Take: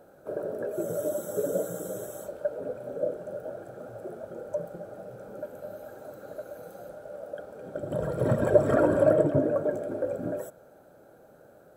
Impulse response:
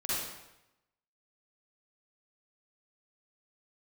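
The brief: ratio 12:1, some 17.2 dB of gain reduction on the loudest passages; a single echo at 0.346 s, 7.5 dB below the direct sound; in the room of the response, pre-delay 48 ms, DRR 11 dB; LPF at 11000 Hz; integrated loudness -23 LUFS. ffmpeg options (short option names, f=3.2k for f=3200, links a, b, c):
-filter_complex "[0:a]lowpass=11k,acompressor=threshold=-31dB:ratio=12,aecho=1:1:346:0.422,asplit=2[a][b];[1:a]atrim=start_sample=2205,adelay=48[c];[b][c]afir=irnorm=-1:irlink=0,volume=-17dB[d];[a][d]amix=inputs=2:normalize=0,volume=14dB"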